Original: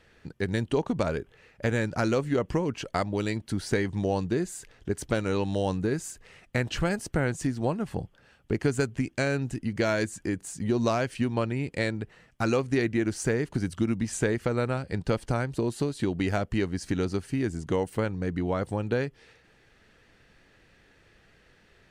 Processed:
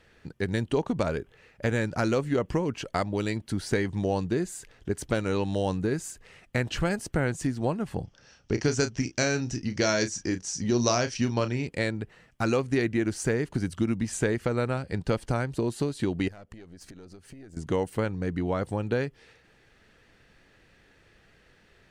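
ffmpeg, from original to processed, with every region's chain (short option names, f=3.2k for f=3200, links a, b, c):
-filter_complex "[0:a]asettb=1/sr,asplit=3[a][b][c];[a]atrim=end=8.044[d];[b]atrim=start=8.04:end=11.67,asetpts=PTS-STARTPTS,afade=t=in:d=0.004:c=qsin,afade=t=out:st=3.626:d=0.004:c=qsin,lowpass=f=5.7k:t=q:w=9,asplit=2[e][f];[f]adelay=33,volume=-10dB[g];[e][g]amix=inputs=2:normalize=0,atrim=end_sample=160083[h];[c]atrim=start=11.666[i];[d][h]acrossfade=d=0.004:c1=hsin:c2=qsin[j];[j][i]acrossfade=d=0.004:c1=qsin:c2=hsin,asettb=1/sr,asplit=3[k][l][m];[k]atrim=end=16.284[n];[l]atrim=start=16.28:end=17.57,asetpts=PTS-STARTPTS,afade=t=in:d=0.004:c=qsin,afade=t=out:st=1.286:d=0.004:c=qsin,acompressor=threshold=-38dB:ratio=10:attack=3.2:release=140:knee=1:detection=peak,aeval=exprs='(tanh(50.1*val(0)+0.7)-tanh(0.7))/50.1':c=same[o];[m]atrim=start=17.566[p];[n][o]acrossfade=d=0.004:c1=hsin:c2=qsin[q];[q][p]acrossfade=d=0.004:c1=qsin:c2=hsin"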